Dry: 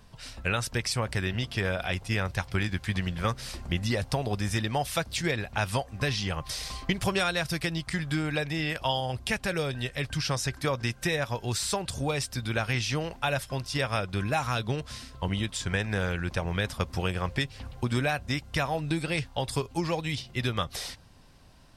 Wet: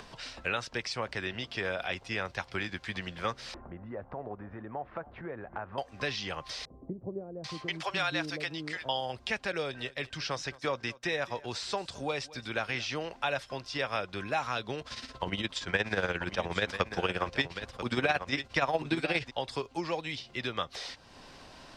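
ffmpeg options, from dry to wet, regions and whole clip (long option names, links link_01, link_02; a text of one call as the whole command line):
ffmpeg -i in.wav -filter_complex "[0:a]asettb=1/sr,asplit=3[link_01][link_02][link_03];[link_01]atrim=end=3.544[link_04];[link_02]atrim=start=3.54:end=5.78,asetpts=PTS-STARTPTS,afade=type=in:duration=0.004:curve=qsin,afade=type=out:start_time=2.236:duration=0.004:curve=qsin,lowpass=frequency=1400:width=0.5412,lowpass=frequency=1400:width=1.3066,acompressor=threshold=-32dB:ratio=2.5:attack=3.2:release=140:knee=1:detection=peak,aecho=1:1:277:0.0944,atrim=end_sample=98784[link_05];[link_03]atrim=start=5.776[link_06];[link_04][link_05]acrossfade=duration=0.004:curve1=hsin:curve2=qsin[link_07];[link_07][link_06]acrossfade=duration=0.004:curve1=qsin:curve2=hsin,asettb=1/sr,asplit=3[link_08][link_09][link_10];[link_08]atrim=end=6.654[link_11];[link_09]atrim=start=6.65:end=8.89,asetpts=PTS-STARTPTS,afade=type=in:duration=0.004:curve=qsin,afade=type=out:start_time=2.236:duration=0.004:curve=qsin,highpass=77,acrossover=split=480[link_12][link_13];[link_13]adelay=790[link_14];[link_12][link_14]amix=inputs=2:normalize=0,atrim=end_sample=98784[link_15];[link_10]atrim=start=8.886[link_16];[link_11][link_15]acrossfade=duration=0.004:curve1=hsin:curve2=qsin[link_17];[link_17][link_16]acrossfade=duration=0.004:curve1=qsin:curve2=hsin,asettb=1/sr,asplit=3[link_18][link_19][link_20];[link_18]atrim=end=9.524[link_21];[link_19]atrim=start=9.52:end=12.91,asetpts=PTS-STARTPTS,afade=type=in:duration=0.004:curve=qsin,afade=type=out:start_time=3.386:duration=0.004:curve=qsin,agate=range=-33dB:threshold=-36dB:ratio=3:release=100:detection=peak,aecho=1:1:220:0.0891,atrim=end_sample=149499[link_22];[link_20]atrim=start=12.906[link_23];[link_21][link_22]acrossfade=duration=0.004:curve1=hsin:curve2=qsin[link_24];[link_24][link_23]acrossfade=duration=0.004:curve1=qsin:curve2=hsin,asettb=1/sr,asplit=3[link_25][link_26][link_27];[link_25]atrim=end=14.814[link_28];[link_26]atrim=start=14.81:end=19.31,asetpts=PTS-STARTPTS,afade=type=in:duration=0.004:curve=qsin,afade=type=out:start_time=4.496:duration=0.004:curve=qsin,aecho=1:1:989:0.299,atrim=end_sample=198450,acontrast=65,tremolo=f=17:d=0.68[link_29];[link_27]atrim=start=19.306[link_30];[link_28][link_29]acrossfade=duration=0.004:curve1=hsin:curve2=qsin[link_31];[link_31][link_30]acrossfade=duration=0.004:curve1=qsin:curve2=hsin,acompressor=mode=upward:threshold=-30dB:ratio=2.5,acrossover=split=250 7400:gain=0.224 1 0.141[link_32][link_33][link_34];[link_32][link_33][link_34]amix=inputs=3:normalize=0,acrossover=split=6400[link_35][link_36];[link_36]acompressor=threshold=-56dB:ratio=4:attack=1:release=60[link_37];[link_35][link_37]amix=inputs=2:normalize=0,volume=-2.5dB" out.wav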